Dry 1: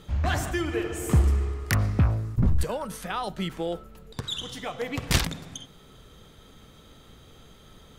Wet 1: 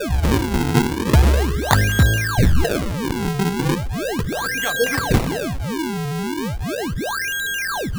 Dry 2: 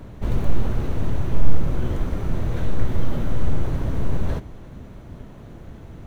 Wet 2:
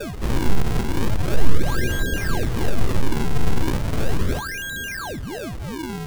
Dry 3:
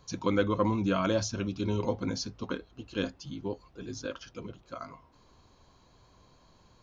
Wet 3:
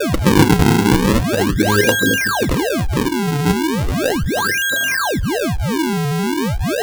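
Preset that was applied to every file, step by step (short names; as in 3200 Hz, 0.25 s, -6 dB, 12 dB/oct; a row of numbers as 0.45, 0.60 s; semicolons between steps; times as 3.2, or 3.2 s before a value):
LFO low-pass square 3.7 Hz 450–1900 Hz; whine 1600 Hz -27 dBFS; decimation with a swept rate 42×, swing 160% 0.37 Hz; normalise peaks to -1.5 dBFS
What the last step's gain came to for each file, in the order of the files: +6.0, -0.5, +12.0 dB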